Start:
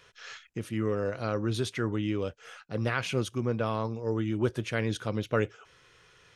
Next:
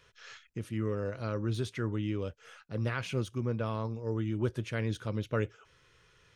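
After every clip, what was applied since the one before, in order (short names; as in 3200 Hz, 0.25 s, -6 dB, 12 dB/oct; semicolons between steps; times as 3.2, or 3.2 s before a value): de-esser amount 85%; low shelf 130 Hz +8.5 dB; notch 740 Hz, Q 12; gain -5.5 dB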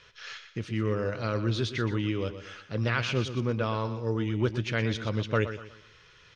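LPF 5700 Hz 24 dB/oct; tilt shelf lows -3.5 dB, about 1400 Hz; on a send: feedback echo 0.121 s, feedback 36%, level -11 dB; on the sum: gain +7 dB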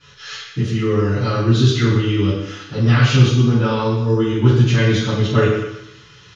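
comb 6.9 ms, depth 41%; reverb RT60 0.65 s, pre-delay 3 ms, DRR -17 dB; gain -7 dB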